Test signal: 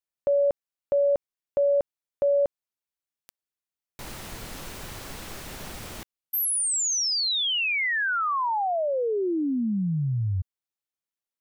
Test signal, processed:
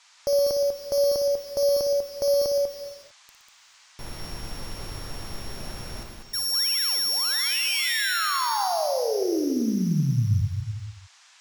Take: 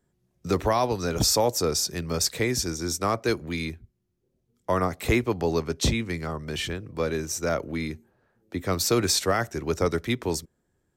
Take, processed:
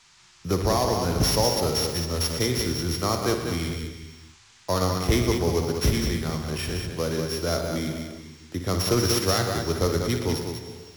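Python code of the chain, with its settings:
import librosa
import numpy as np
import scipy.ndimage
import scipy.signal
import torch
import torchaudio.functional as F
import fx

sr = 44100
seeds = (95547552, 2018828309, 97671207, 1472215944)

p1 = np.r_[np.sort(x[:len(x) // 8 * 8].reshape(-1, 8), axis=1).ravel(), x[len(x) // 8 * 8:]]
p2 = fx.low_shelf(p1, sr, hz=96.0, db=8.0)
p3 = fx.dmg_noise_band(p2, sr, seeds[0], low_hz=830.0, high_hz=7100.0, level_db=-56.0)
p4 = p3 + fx.echo_multitap(p3, sr, ms=(58, 119, 195), db=(-8.5, -10.0, -6.0), dry=0)
p5 = fx.rev_gated(p4, sr, seeds[1], gate_ms=470, shape='flat', drr_db=9.5)
p6 = fx.doppler_dist(p5, sr, depth_ms=0.18)
y = p6 * librosa.db_to_amplitude(-1.5)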